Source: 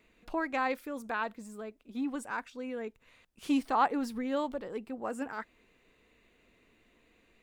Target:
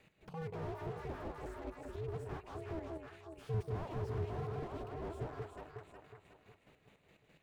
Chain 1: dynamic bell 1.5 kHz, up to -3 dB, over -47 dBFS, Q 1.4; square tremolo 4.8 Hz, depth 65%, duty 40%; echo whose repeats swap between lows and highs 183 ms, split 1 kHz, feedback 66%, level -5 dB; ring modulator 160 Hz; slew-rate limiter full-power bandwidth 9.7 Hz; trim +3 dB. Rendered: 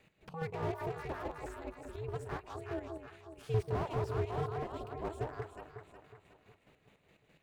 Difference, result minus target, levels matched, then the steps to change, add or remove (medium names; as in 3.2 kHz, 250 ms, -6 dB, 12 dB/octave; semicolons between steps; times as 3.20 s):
slew-rate limiter: distortion -6 dB
change: slew-rate limiter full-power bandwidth 3.5 Hz